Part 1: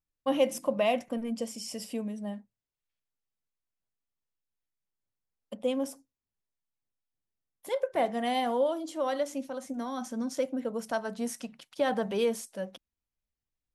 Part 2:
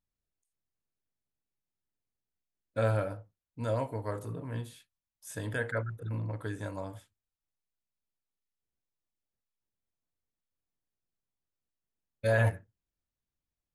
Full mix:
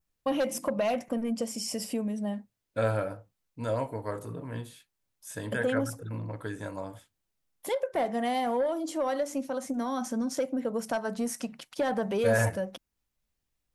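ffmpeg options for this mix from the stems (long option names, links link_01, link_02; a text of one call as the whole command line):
ffmpeg -i stem1.wav -i stem2.wav -filter_complex "[0:a]aeval=exprs='0.2*sin(PI/2*1.78*val(0)/0.2)':channel_layout=same,acompressor=threshold=-28dB:ratio=2,volume=-2dB[link_01];[1:a]equalizer=frequency=95:width_type=o:width=0.77:gain=-5.5,volume=2dB[link_02];[link_01][link_02]amix=inputs=2:normalize=0,adynamicequalizer=threshold=0.00178:dfrequency=3400:dqfactor=1.8:tfrequency=3400:tqfactor=1.8:attack=5:release=100:ratio=0.375:range=3:mode=cutabove:tftype=bell" out.wav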